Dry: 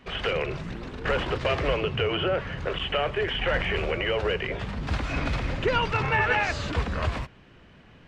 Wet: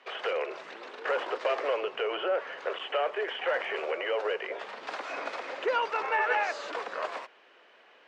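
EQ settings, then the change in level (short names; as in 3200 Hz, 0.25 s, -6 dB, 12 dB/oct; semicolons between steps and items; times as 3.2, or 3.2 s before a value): dynamic EQ 3000 Hz, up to -7 dB, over -41 dBFS, Q 0.78; HPF 450 Hz 24 dB/oct; air absorption 60 m; 0.0 dB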